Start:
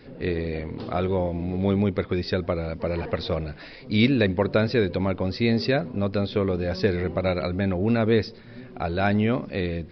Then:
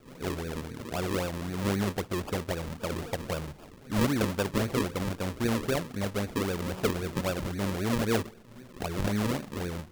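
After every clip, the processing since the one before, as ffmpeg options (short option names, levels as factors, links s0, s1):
-af "acrusher=samples=42:mix=1:aa=0.000001:lfo=1:lforange=42:lforate=3.8,volume=0.473"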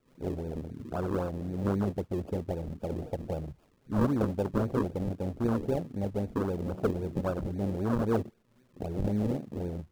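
-af "afwtdn=0.0282"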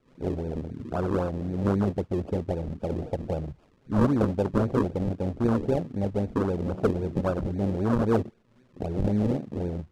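-af "adynamicsmooth=sensitivity=5.5:basefreq=7100,volume=1.68"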